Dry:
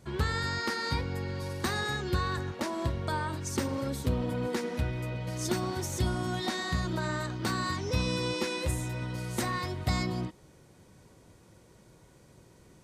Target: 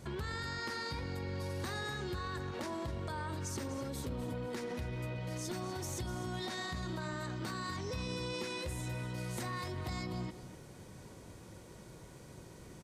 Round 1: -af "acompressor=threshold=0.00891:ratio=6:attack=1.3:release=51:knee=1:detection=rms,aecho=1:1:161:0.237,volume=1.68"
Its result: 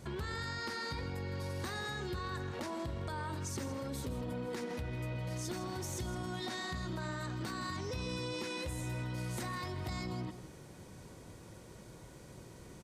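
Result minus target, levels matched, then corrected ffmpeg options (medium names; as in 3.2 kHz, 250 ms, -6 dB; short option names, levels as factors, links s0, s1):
echo 88 ms early
-af "acompressor=threshold=0.00891:ratio=6:attack=1.3:release=51:knee=1:detection=rms,aecho=1:1:249:0.237,volume=1.68"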